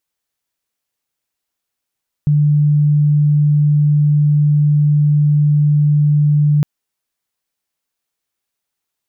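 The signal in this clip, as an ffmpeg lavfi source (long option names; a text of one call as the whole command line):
ffmpeg -f lavfi -i "aevalsrc='0.355*sin(2*PI*148*t)':duration=4.36:sample_rate=44100" out.wav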